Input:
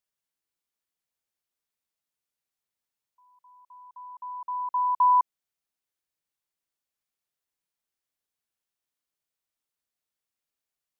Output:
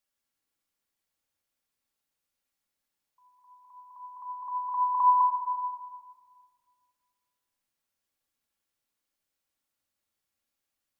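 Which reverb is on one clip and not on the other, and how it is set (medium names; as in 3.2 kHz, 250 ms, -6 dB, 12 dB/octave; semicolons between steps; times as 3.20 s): simulated room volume 3700 m³, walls mixed, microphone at 2.3 m; trim +1 dB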